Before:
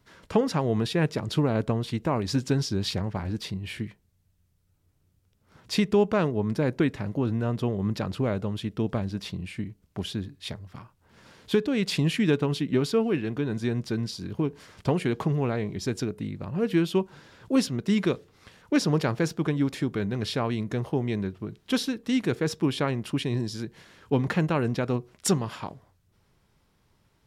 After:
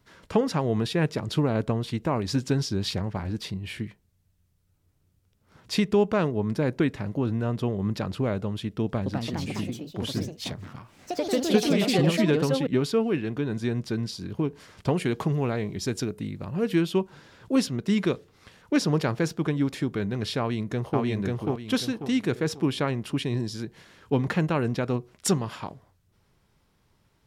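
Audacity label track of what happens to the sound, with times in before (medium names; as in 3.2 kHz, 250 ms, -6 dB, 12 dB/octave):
8.840000	13.130000	ever faster or slower copies 220 ms, each echo +3 st, echoes 3
14.970000	16.810000	treble shelf 4.6 kHz +5 dB
20.390000	21.010000	echo throw 540 ms, feedback 35%, level -1 dB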